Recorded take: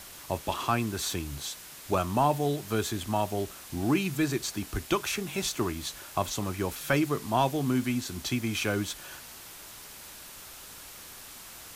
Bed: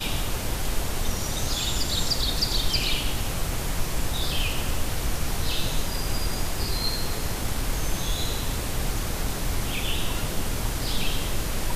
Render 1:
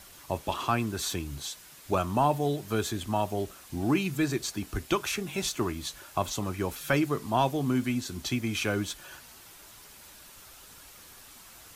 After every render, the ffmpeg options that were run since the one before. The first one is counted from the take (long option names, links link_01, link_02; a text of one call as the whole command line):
ffmpeg -i in.wav -af "afftdn=noise_reduction=6:noise_floor=-47" out.wav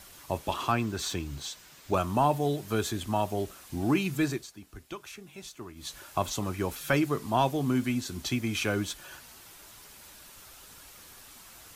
ffmpeg -i in.wav -filter_complex "[0:a]asettb=1/sr,asplit=3[link_01][link_02][link_03];[link_01]atrim=end=0.724[link_04];[link_02]atrim=start=0.72:end=1.94,asetpts=PTS-STARTPTS,afade=type=in:duration=0.004:curve=qsin,afade=type=out:start_time=1.216:duration=0.004:curve=qsin,equalizer=frequency=11000:width_type=o:width=0.46:gain=-11.5[link_05];[link_03]atrim=start=1.936[link_06];[link_04][link_05]acrossfade=duration=0.004:curve1=hsin:curve2=qsin[link_07];[link_07][link_06]acrossfade=duration=0.004:curve1=qsin:curve2=hsin,asplit=3[link_08][link_09][link_10];[link_08]atrim=end=4.47,asetpts=PTS-STARTPTS,afade=type=out:start_time=4.27:duration=0.2:silence=0.211349[link_11];[link_09]atrim=start=4.47:end=5.75,asetpts=PTS-STARTPTS,volume=-13.5dB[link_12];[link_10]atrim=start=5.75,asetpts=PTS-STARTPTS,afade=type=in:duration=0.2:silence=0.211349[link_13];[link_11][link_12][link_13]concat=n=3:v=0:a=1" out.wav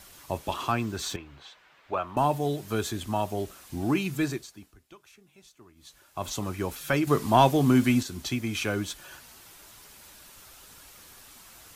ffmpeg -i in.wav -filter_complex "[0:a]asettb=1/sr,asplit=3[link_01][link_02][link_03];[link_01]atrim=end=1.164[link_04];[link_02]atrim=start=1.16:end=2.17,asetpts=PTS-STARTPTS,afade=type=in:duration=0.004:curve=qsin,afade=type=out:start_time=1.006:duration=0.004:curve=qsin,acrossover=split=450 3100:gain=0.224 1 0.0631[link_05][link_06][link_07];[link_05][link_06][link_07]amix=inputs=3:normalize=0[link_08];[link_03]atrim=start=2.166[link_09];[link_04][link_08]acrossfade=duration=0.004:curve1=hsin:curve2=qsin[link_10];[link_10][link_09]acrossfade=duration=0.004:curve1=qsin:curve2=hsin,asettb=1/sr,asplit=3[link_11][link_12][link_13];[link_11]atrim=end=7.074[link_14];[link_12]atrim=start=7.07:end=8.03,asetpts=PTS-STARTPTS,afade=type=in:duration=0.004:curve=qsin,afade=type=out:start_time=0.956:duration=0.004:curve=qsin,acontrast=73[link_15];[link_13]atrim=start=8.026[link_16];[link_14][link_15]acrossfade=duration=0.004:curve1=hsin:curve2=qsin[link_17];[link_17][link_16]acrossfade=duration=0.004:curve1=qsin:curve2=hsin,asplit=3[link_18][link_19][link_20];[link_18]atrim=end=4.76,asetpts=PTS-STARTPTS,afade=type=out:start_time=4.63:duration=0.13:silence=0.281838[link_21];[link_19]atrim=start=4.76:end=6.15,asetpts=PTS-STARTPTS,volume=-11dB[link_22];[link_20]atrim=start=6.15,asetpts=PTS-STARTPTS,afade=type=in:duration=0.13:silence=0.281838[link_23];[link_21][link_22][link_23]concat=n=3:v=0:a=1" out.wav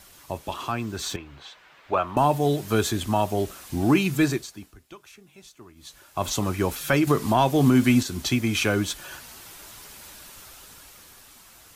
ffmpeg -i in.wav -af "alimiter=limit=-15.5dB:level=0:latency=1:release=288,dynaudnorm=framelen=240:gausssize=11:maxgain=6.5dB" out.wav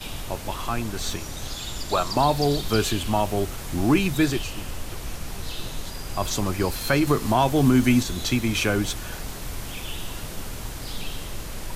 ffmpeg -i in.wav -i bed.wav -filter_complex "[1:a]volume=-6.5dB[link_01];[0:a][link_01]amix=inputs=2:normalize=0" out.wav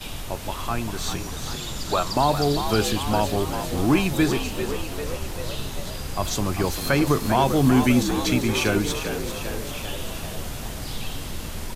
ffmpeg -i in.wav -filter_complex "[0:a]asplit=9[link_01][link_02][link_03][link_04][link_05][link_06][link_07][link_08][link_09];[link_02]adelay=395,afreqshift=65,volume=-9dB[link_10];[link_03]adelay=790,afreqshift=130,volume=-13.2dB[link_11];[link_04]adelay=1185,afreqshift=195,volume=-17.3dB[link_12];[link_05]adelay=1580,afreqshift=260,volume=-21.5dB[link_13];[link_06]adelay=1975,afreqshift=325,volume=-25.6dB[link_14];[link_07]adelay=2370,afreqshift=390,volume=-29.8dB[link_15];[link_08]adelay=2765,afreqshift=455,volume=-33.9dB[link_16];[link_09]adelay=3160,afreqshift=520,volume=-38.1dB[link_17];[link_01][link_10][link_11][link_12][link_13][link_14][link_15][link_16][link_17]amix=inputs=9:normalize=0" out.wav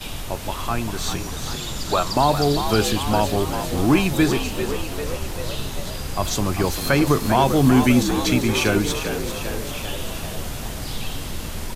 ffmpeg -i in.wav -af "volume=2.5dB" out.wav